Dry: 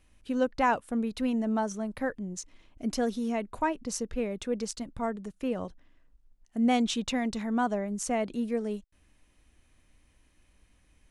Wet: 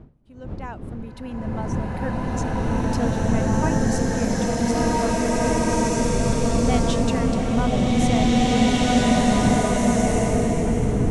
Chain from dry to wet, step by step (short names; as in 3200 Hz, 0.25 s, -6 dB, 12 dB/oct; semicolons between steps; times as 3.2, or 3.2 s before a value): opening faded in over 2.41 s; wind noise 190 Hz -34 dBFS; bloom reverb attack 2.06 s, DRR -10.5 dB